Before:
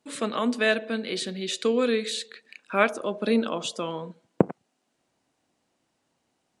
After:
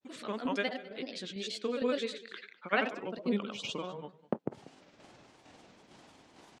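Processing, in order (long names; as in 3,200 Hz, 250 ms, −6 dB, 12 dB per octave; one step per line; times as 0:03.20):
low-pass filter 5,700 Hz 12 dB per octave
reversed playback
upward compression, threshold −27 dBFS
reversed playback
granular cloud, pitch spread up and down by 3 semitones
shaped tremolo saw down 2.2 Hz, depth 50%
on a send: single-tap delay 201 ms −19 dB
on the sum: wow of a warped record 33 1/3 rpm, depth 160 cents
level −5.5 dB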